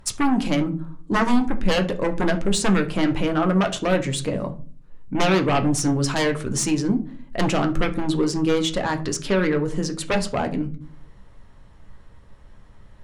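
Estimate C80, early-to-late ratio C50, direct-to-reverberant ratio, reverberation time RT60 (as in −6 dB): 20.5 dB, 15.0 dB, 5.0 dB, 0.40 s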